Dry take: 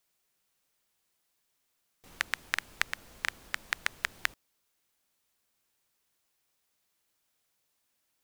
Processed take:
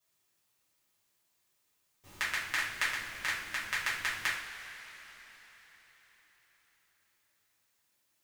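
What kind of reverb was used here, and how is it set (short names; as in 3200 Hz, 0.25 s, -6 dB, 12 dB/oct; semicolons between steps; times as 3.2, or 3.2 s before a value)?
two-slope reverb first 0.47 s, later 4.6 s, from -17 dB, DRR -9.5 dB; gain -8.5 dB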